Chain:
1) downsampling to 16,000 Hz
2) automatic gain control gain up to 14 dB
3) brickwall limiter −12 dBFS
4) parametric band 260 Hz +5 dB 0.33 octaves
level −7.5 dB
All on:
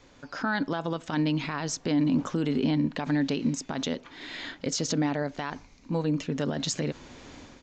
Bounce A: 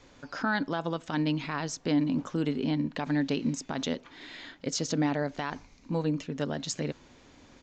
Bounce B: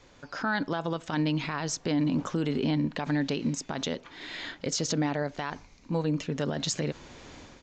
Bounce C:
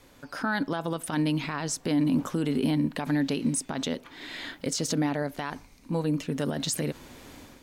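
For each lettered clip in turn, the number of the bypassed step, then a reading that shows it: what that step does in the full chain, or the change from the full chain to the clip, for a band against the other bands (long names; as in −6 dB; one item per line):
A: 2, change in momentary loudness spread −2 LU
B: 4, 250 Hz band −2.0 dB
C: 1, 8 kHz band +2.5 dB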